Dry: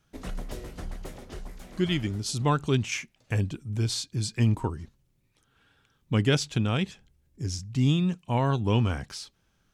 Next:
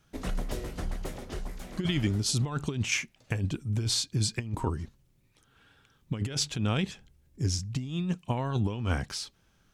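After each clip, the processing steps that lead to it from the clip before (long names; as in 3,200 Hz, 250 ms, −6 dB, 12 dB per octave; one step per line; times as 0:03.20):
compressor whose output falls as the input rises −27 dBFS, ratio −0.5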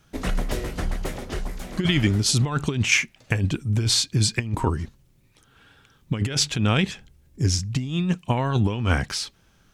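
dynamic equaliser 2,000 Hz, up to +4 dB, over −50 dBFS, Q 1.1
level +7 dB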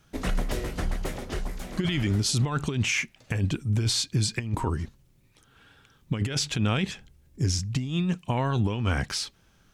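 brickwall limiter −14.5 dBFS, peak gain reduction 8.5 dB
level −2 dB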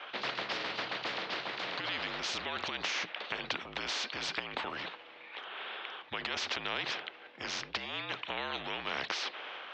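transient designer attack −2 dB, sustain +4 dB
single-sideband voice off tune −54 Hz 590–3,400 Hz
every bin compressed towards the loudest bin 4 to 1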